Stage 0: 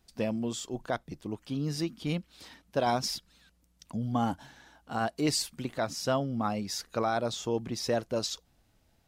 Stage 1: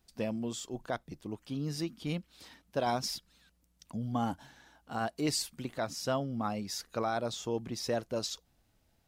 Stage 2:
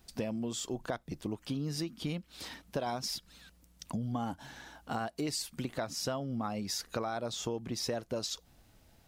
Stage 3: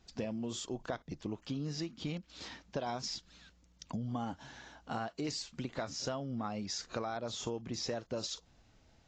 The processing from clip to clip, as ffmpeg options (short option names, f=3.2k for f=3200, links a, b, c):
-af "highshelf=f=12k:g=4,volume=-3.5dB"
-af "acompressor=threshold=-42dB:ratio=6,volume=9dB"
-af "volume=-2.5dB" -ar 16000 -c:a aac -b:a 32k